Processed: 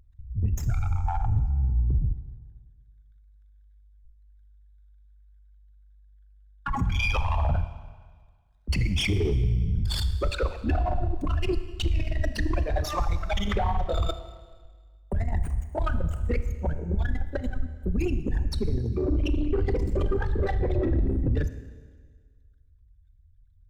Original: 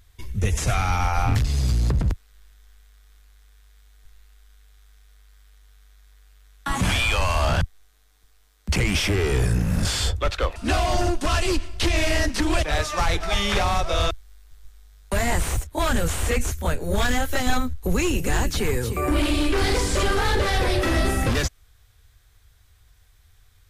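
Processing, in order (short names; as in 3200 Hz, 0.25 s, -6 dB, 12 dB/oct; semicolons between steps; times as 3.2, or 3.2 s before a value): formant sharpening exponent 3; in parallel at -5.5 dB: soft clip -24 dBFS, distortion -11 dB; on the sum: Schroeder reverb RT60 1.6 s, combs from 26 ms, DRR 11 dB; running maximum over 3 samples; gain -4.5 dB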